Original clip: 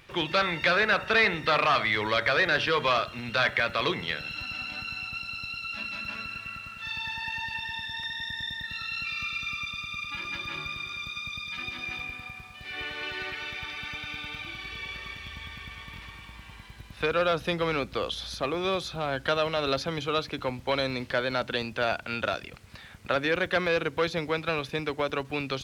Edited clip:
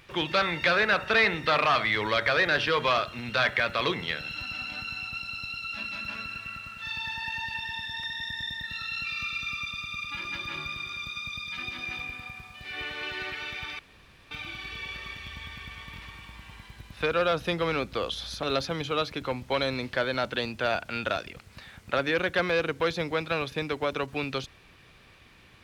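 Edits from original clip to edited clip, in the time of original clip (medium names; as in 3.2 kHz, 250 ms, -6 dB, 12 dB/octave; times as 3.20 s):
13.79–14.31 s: room tone
18.43–19.60 s: delete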